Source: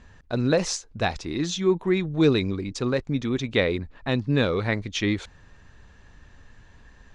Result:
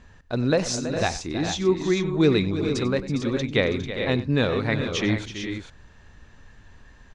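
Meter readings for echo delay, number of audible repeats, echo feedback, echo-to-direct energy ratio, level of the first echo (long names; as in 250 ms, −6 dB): 95 ms, 4, repeats not evenly spaced, −5.5 dB, −17.0 dB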